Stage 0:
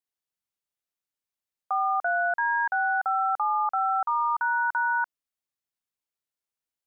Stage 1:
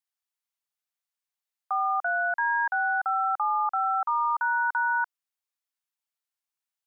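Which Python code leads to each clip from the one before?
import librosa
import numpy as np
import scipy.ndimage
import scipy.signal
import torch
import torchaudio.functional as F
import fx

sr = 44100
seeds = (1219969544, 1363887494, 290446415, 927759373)

y = scipy.signal.sosfilt(scipy.signal.butter(4, 700.0, 'highpass', fs=sr, output='sos'), x)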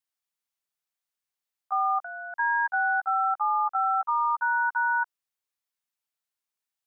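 y = fx.level_steps(x, sr, step_db=13)
y = y * librosa.db_to_amplitude(1.5)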